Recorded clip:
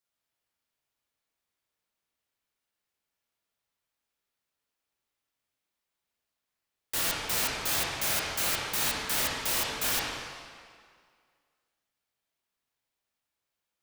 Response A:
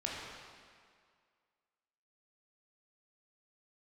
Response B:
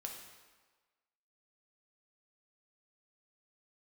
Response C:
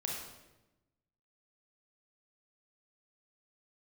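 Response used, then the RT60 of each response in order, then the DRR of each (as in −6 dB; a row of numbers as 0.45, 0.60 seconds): A; 2.0, 1.4, 1.0 seconds; −4.5, 1.0, −2.0 decibels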